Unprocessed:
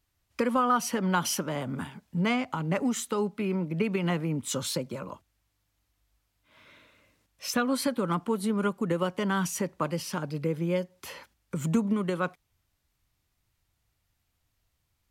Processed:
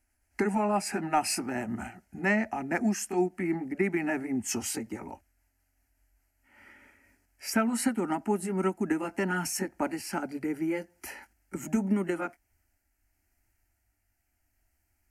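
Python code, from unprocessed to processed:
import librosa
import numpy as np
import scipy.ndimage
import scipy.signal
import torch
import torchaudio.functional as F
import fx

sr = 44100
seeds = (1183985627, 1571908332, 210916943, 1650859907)

y = fx.pitch_glide(x, sr, semitones=-3.0, runs='ending unshifted')
y = fx.fixed_phaser(y, sr, hz=730.0, stages=8)
y = F.gain(torch.from_numpy(y), 5.0).numpy()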